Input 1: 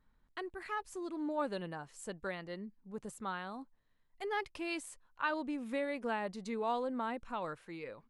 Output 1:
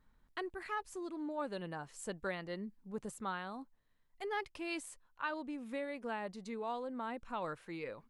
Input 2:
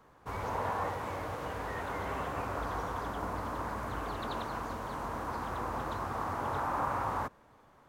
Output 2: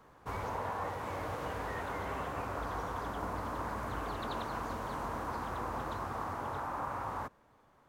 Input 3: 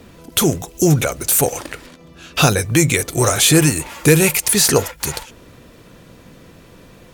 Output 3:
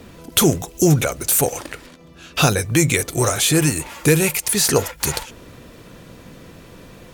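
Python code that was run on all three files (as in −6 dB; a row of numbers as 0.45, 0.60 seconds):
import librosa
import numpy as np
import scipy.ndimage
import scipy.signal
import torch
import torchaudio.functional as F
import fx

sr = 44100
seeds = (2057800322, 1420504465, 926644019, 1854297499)

y = fx.rider(x, sr, range_db=4, speed_s=0.5)
y = y * 10.0 ** (-2.0 / 20.0)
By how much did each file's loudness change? −2.5, −2.0, −2.5 LU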